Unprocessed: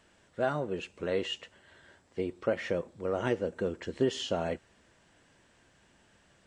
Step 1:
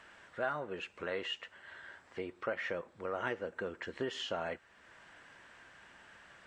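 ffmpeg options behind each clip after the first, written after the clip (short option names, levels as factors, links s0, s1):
-af "equalizer=f=1500:w=0.5:g=15,acompressor=threshold=0.00316:ratio=1.5,volume=0.708"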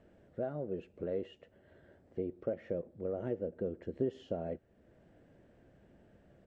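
-af "firequalizer=gain_entry='entry(160,0);entry(620,-7);entry(980,-27)':delay=0.05:min_phase=1,volume=2.37"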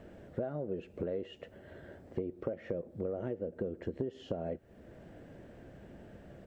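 -af "acompressor=threshold=0.00631:ratio=6,volume=3.35"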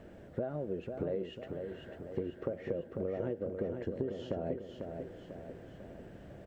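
-af "aecho=1:1:496|992|1488|1984|2480|2976:0.501|0.261|0.136|0.0705|0.0366|0.0191"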